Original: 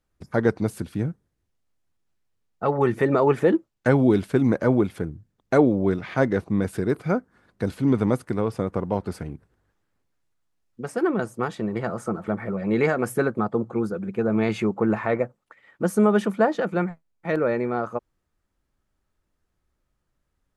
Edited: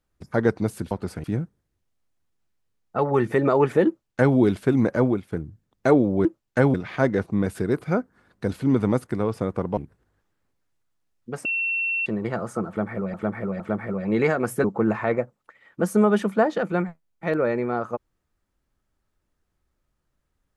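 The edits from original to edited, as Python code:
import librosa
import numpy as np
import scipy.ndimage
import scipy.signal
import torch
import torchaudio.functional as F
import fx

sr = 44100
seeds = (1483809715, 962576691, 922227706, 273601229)

y = fx.edit(x, sr, fx.duplicate(start_s=3.54, length_s=0.49, to_s=5.92),
    fx.fade_out_to(start_s=4.69, length_s=0.3, floor_db=-14.0),
    fx.move(start_s=8.95, length_s=0.33, to_s=0.91),
    fx.bleep(start_s=10.96, length_s=0.61, hz=2710.0, db=-22.0),
    fx.repeat(start_s=12.19, length_s=0.46, count=3),
    fx.cut(start_s=13.23, length_s=1.43), tone=tone)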